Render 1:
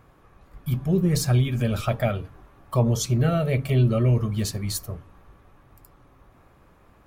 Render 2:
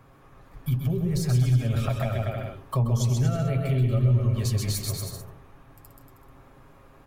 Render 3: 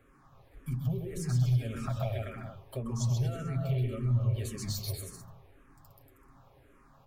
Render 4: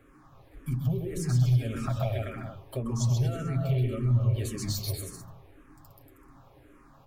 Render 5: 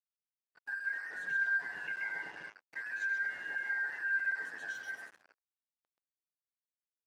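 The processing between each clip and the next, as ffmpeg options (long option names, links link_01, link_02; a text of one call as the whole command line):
ffmpeg -i in.wav -filter_complex "[0:a]aecho=1:1:7.4:0.47,aecho=1:1:130|234|317.2|383.8|437:0.631|0.398|0.251|0.158|0.1,acrossover=split=110[link_01][link_02];[link_02]acompressor=threshold=-27dB:ratio=6[link_03];[link_01][link_03]amix=inputs=2:normalize=0" out.wav
ffmpeg -i in.wav -filter_complex "[0:a]asplit=2[link_01][link_02];[link_02]afreqshift=-1.8[link_03];[link_01][link_03]amix=inputs=2:normalize=1,volume=-4.5dB" out.wav
ffmpeg -i in.wav -af "equalizer=frequency=310:width=6.2:gain=8.5,volume=3.5dB" out.wav
ffmpeg -i in.wav -af "afftfilt=real='real(if(lt(b,272),68*(eq(floor(b/68),0)*1+eq(floor(b/68),1)*0+eq(floor(b/68),2)*3+eq(floor(b/68),3)*2)+mod(b,68),b),0)':imag='imag(if(lt(b,272),68*(eq(floor(b/68),0)*1+eq(floor(b/68),1)*0+eq(floor(b/68),2)*3+eq(floor(b/68),3)*2)+mod(b,68),b),0)':win_size=2048:overlap=0.75,acrusher=bits=5:mix=0:aa=0.5,bandpass=frequency=570:width_type=q:width=0.65:csg=0,volume=-4dB" out.wav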